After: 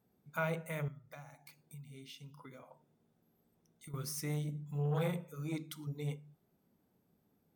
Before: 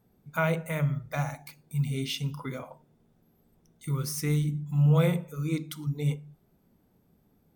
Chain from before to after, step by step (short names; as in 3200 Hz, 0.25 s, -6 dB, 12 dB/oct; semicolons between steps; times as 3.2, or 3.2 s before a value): HPF 140 Hz 6 dB/oct; 0.88–3.94 compressor 5:1, threshold -43 dBFS, peak gain reduction 15.5 dB; core saturation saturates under 430 Hz; gain -7 dB